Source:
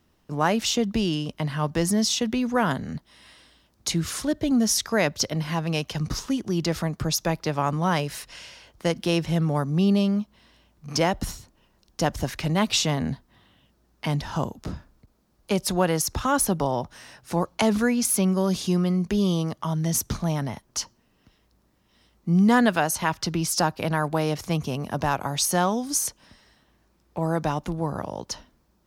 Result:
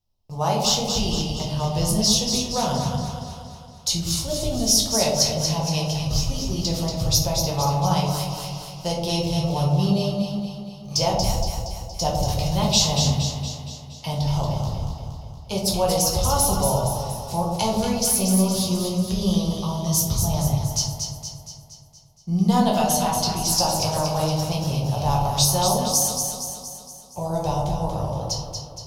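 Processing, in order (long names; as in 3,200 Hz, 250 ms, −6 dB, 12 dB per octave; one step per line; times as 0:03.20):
noise gate −51 dBFS, range −17 dB
drawn EQ curve 100 Hz 0 dB, 290 Hz −21 dB, 500 Hz −11 dB, 850 Hz −6 dB, 1,700 Hz −25 dB, 3,000 Hz −8 dB, 5,100 Hz −1 dB, 8,800 Hz −7 dB, 14,000 Hz −2 dB
on a send: delay that swaps between a low-pass and a high-pass 117 ms, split 810 Hz, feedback 74%, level −3 dB
on the sum: rectangular room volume 70 cubic metres, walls mixed, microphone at 0.87 metres
level +5.5 dB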